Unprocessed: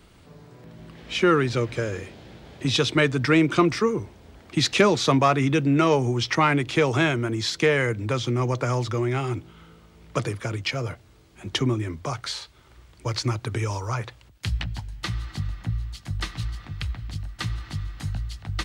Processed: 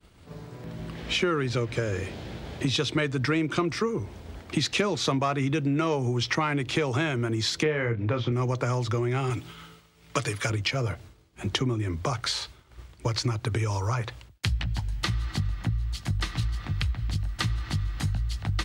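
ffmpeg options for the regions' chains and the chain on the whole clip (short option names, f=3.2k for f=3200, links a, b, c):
-filter_complex "[0:a]asettb=1/sr,asplit=3[a][b][c];[a]atrim=end=7.634[d];[b]atrim=start=7.63:end=8.32,asetpts=PTS-STARTPTS,afade=t=in:d=0.004:c=qsin,afade=t=out:st=0.686:d=0.004:c=qsin,lowpass=3.6k,aemphasis=mode=reproduction:type=50fm,asplit=2[e][f];[f]adelay=26,volume=-7dB[g];[e][g]amix=inputs=2:normalize=0,atrim=end_sample=30429[h];[c]atrim=start=8.316[i];[d][h]acrossfade=d=0.004:c1=hsin:c2=qsin[j];[j][i]acrossfade=d=0.004:c1=qsin:c2=hsin,asettb=1/sr,asplit=3[k][l][m];[k]atrim=end=9.304[n];[l]atrim=start=9.3:end=10.5,asetpts=PTS-STARTPTS,afade=t=in:d=0.004:c=qsin,afade=t=out:st=1.196:d=0.004:c=qsin,tiltshelf=f=1.1k:g=-5.5,aecho=1:1:7:0.48,atrim=end_sample=52920[o];[m]atrim=start=10.496[p];[n][o]acrossfade=d=0.004:c1=hsin:c2=qsin[q];[q][p]acrossfade=d=0.004:c1=qsin:c2=hsin,agate=range=-33dB:threshold=-45dB:ratio=3:detection=peak,equalizer=f=75:t=o:w=1.2:g=3.5,acompressor=threshold=-31dB:ratio=4,volume=6dB"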